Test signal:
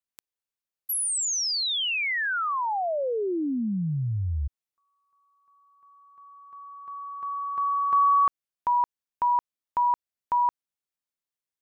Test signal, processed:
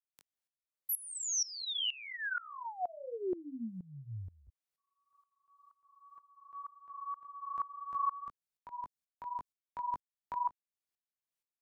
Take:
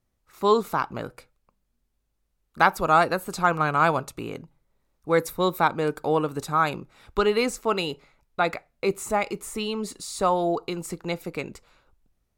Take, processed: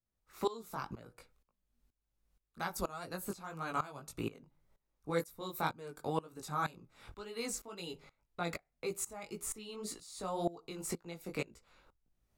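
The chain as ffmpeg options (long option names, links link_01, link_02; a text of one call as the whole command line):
ffmpeg -i in.wav -filter_complex "[0:a]acrossover=split=270|4400[link_01][link_02][link_03];[link_01]acompressor=threshold=-39dB:ratio=6[link_04];[link_02]acompressor=threshold=-40dB:ratio=2[link_05];[link_03]acompressor=threshold=-35dB:ratio=2[link_06];[link_04][link_05][link_06]amix=inputs=3:normalize=0,flanger=delay=17:depth=4.2:speed=1.9,aeval=exprs='val(0)*pow(10,-20*if(lt(mod(-2.1*n/s,1),2*abs(-2.1)/1000),1-mod(-2.1*n/s,1)/(2*abs(-2.1)/1000),(mod(-2.1*n/s,1)-2*abs(-2.1)/1000)/(1-2*abs(-2.1)/1000))/20)':channel_layout=same,volume=4dB" out.wav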